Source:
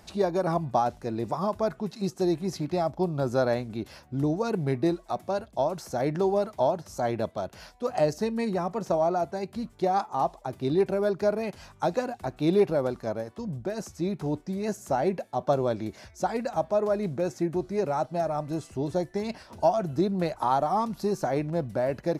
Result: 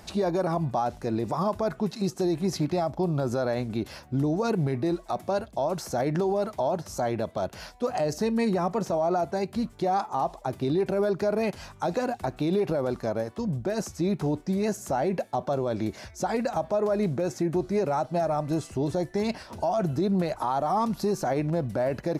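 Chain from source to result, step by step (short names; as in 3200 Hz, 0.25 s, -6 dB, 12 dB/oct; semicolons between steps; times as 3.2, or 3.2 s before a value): limiter -23 dBFS, peak gain reduction 12 dB; gain +5 dB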